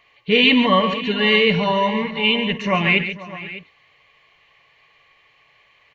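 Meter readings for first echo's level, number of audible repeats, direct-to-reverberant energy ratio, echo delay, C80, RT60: -18.0 dB, 4, no reverb, 53 ms, no reverb, no reverb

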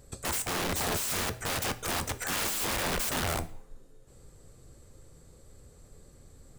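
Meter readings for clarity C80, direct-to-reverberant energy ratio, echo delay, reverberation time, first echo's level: 21.5 dB, 11.5 dB, no echo, 0.50 s, no echo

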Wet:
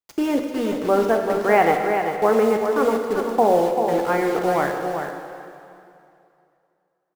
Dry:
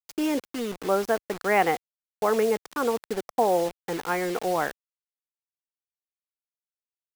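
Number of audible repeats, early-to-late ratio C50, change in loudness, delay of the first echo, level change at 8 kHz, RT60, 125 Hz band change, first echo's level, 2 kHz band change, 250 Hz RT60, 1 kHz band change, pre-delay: 1, 2.5 dB, +6.0 dB, 391 ms, -0.5 dB, 2.6 s, +7.0 dB, -7.0 dB, +4.0 dB, 2.6 s, +6.5 dB, 5 ms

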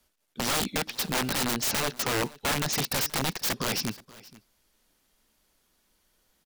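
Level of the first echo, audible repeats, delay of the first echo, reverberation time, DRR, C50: -21.0 dB, 1, 477 ms, no reverb, no reverb, no reverb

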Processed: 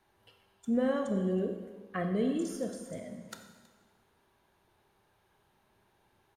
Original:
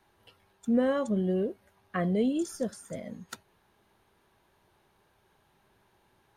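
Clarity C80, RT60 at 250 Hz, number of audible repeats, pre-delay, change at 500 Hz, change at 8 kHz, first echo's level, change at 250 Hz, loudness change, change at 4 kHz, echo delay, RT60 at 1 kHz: 8.0 dB, 1.4 s, 1, 17 ms, -2.5 dB, -3.0 dB, -21.5 dB, -3.0 dB, -3.0 dB, -3.0 dB, 322 ms, 1.4 s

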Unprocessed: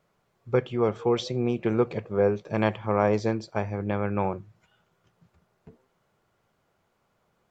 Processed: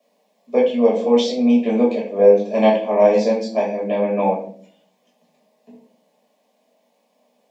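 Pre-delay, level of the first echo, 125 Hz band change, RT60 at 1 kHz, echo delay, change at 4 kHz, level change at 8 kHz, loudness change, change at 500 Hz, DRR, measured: 5 ms, no echo, no reading, 0.45 s, no echo, +9.0 dB, no reading, +9.5 dB, +10.5 dB, -4.5 dB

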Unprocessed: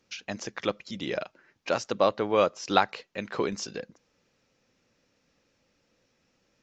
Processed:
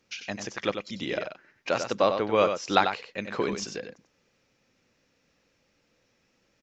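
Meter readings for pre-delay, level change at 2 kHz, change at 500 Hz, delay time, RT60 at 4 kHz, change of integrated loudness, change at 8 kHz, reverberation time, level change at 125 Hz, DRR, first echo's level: no reverb, +2.0 dB, +0.5 dB, 94 ms, no reverb, +0.5 dB, no reading, no reverb, +1.0 dB, no reverb, -7.5 dB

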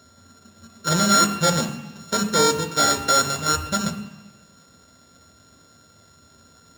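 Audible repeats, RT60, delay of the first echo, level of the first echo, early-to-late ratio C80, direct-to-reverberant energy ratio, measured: no echo, 1.0 s, no echo, no echo, 12.0 dB, 5.5 dB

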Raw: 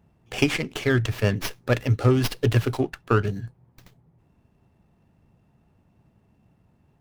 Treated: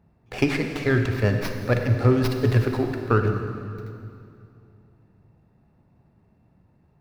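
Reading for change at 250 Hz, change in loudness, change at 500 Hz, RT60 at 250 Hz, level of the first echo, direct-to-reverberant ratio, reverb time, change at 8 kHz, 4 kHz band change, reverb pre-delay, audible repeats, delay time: +1.5 dB, +1.0 dB, +1.5 dB, 2.8 s, no echo, 5.0 dB, 2.5 s, no reading, -5.0 dB, 37 ms, no echo, no echo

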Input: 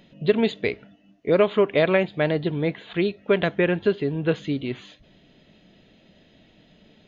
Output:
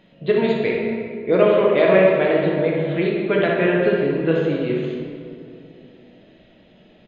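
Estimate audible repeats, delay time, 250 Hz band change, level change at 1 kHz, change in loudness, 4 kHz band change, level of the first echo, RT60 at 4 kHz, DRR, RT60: 1, 62 ms, +4.0 dB, +5.5 dB, +4.5 dB, +0.5 dB, -6.0 dB, 1.2 s, -3.5 dB, 2.5 s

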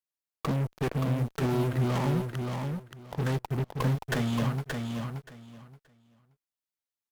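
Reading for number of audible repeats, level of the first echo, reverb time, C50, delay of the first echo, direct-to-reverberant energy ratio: 3, -5.0 dB, no reverb, no reverb, 576 ms, no reverb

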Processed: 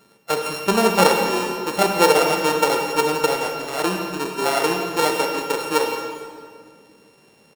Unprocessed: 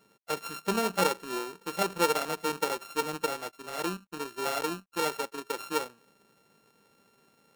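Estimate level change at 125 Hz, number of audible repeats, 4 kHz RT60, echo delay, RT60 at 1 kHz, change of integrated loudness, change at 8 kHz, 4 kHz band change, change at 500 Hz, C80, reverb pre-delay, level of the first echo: +11.5 dB, 1, 1.6 s, 172 ms, 1.9 s, +11.5 dB, +10.0 dB, +11.5 dB, +13.0 dB, 5.0 dB, 33 ms, -14.0 dB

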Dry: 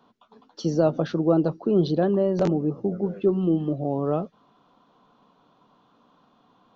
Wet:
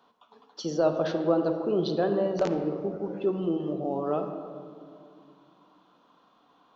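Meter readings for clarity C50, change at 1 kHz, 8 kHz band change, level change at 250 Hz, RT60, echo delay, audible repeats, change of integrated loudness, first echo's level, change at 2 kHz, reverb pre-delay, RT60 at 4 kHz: 6.5 dB, -0.5 dB, no reading, -6.0 dB, 2.3 s, no echo, no echo, -4.5 dB, no echo, +0.5 dB, 35 ms, 1.2 s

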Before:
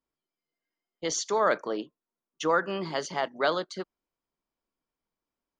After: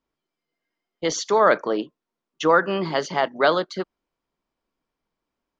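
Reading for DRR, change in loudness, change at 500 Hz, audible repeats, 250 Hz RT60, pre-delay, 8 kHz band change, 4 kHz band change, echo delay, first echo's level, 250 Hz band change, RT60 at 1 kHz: no reverb, +7.5 dB, +7.5 dB, no echo, no reverb, no reverb, +1.5 dB, +5.5 dB, no echo, no echo, +8.0 dB, no reverb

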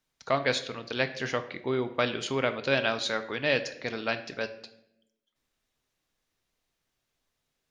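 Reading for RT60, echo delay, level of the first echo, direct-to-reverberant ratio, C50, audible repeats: 0.80 s, no echo, no echo, 8.5 dB, 13.0 dB, no echo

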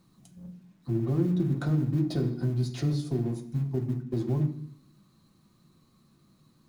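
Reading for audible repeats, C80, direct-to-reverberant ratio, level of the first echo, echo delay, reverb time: no echo, 14.5 dB, 2.0 dB, no echo, no echo, 0.65 s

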